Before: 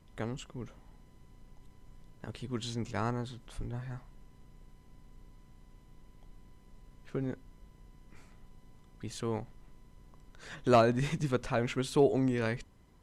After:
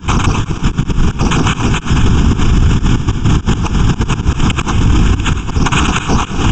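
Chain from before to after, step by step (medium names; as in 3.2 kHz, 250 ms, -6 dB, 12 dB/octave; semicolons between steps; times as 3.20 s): self-modulated delay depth 0.9 ms; recorder AGC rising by 78 dB/s; hum notches 60/120/180/240/300/360 Hz; sample-and-hold 17×; LPC vocoder at 8 kHz whisper; inverted gate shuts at -19 dBFS, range -29 dB; echo that smears into a reverb 502 ms, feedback 45%, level -12 dB; speed mistake 7.5 ips tape played at 15 ips; static phaser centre 2.9 kHz, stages 8; loudness maximiser +27 dB; endings held to a fixed fall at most 350 dB/s; trim -1 dB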